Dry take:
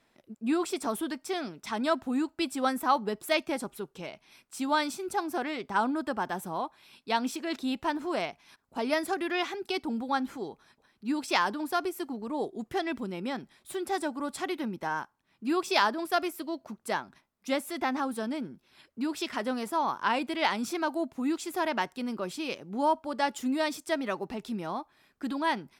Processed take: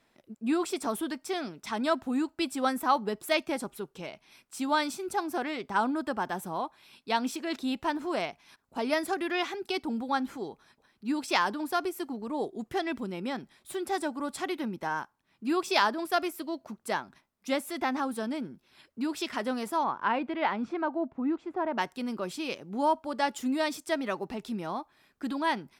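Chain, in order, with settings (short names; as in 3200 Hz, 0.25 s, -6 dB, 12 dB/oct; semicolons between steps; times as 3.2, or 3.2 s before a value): 19.83–21.77 LPF 2500 Hz -> 1100 Hz 12 dB/oct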